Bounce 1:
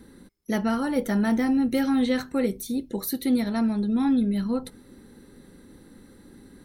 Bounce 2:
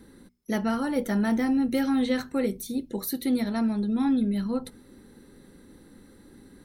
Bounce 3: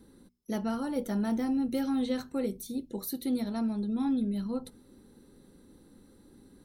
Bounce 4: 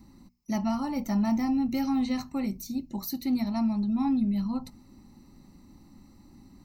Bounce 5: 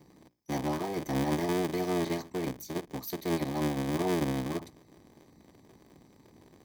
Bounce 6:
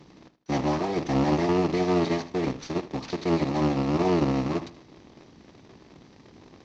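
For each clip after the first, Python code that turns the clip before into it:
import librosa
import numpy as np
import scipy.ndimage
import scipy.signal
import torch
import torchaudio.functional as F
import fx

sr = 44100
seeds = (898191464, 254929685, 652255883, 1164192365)

y1 = fx.hum_notches(x, sr, base_hz=60, count=4)
y1 = y1 * librosa.db_to_amplitude(-1.5)
y2 = fx.peak_eq(y1, sr, hz=1900.0, db=-7.5, octaves=0.77)
y2 = y2 * librosa.db_to_amplitude(-5.0)
y3 = fx.fixed_phaser(y2, sr, hz=2300.0, stages=8)
y3 = y3 * librosa.db_to_amplitude(7.0)
y4 = fx.cycle_switch(y3, sr, every=3, mode='inverted')
y4 = fx.notch_comb(y4, sr, f0_hz=1400.0)
y4 = y4 * librosa.db_to_amplitude(-2.5)
y5 = fx.cvsd(y4, sr, bps=32000)
y5 = fx.echo_feedback(y5, sr, ms=78, feedback_pct=35, wet_db=-16)
y5 = y5 * librosa.db_to_amplitude(6.5)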